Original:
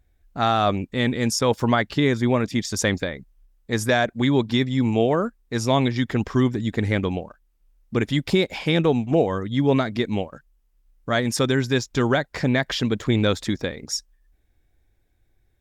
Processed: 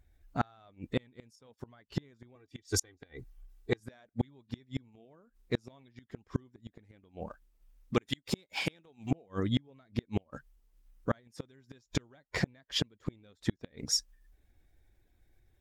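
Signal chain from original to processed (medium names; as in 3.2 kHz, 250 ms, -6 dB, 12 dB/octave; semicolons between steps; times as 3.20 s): coarse spectral quantiser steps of 15 dB; 2.35–3.80 s: comb 2.6 ms, depth 79%; 7.94–9.11 s: tilt EQ +2 dB/octave; inverted gate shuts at -14 dBFS, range -37 dB; trim -1.5 dB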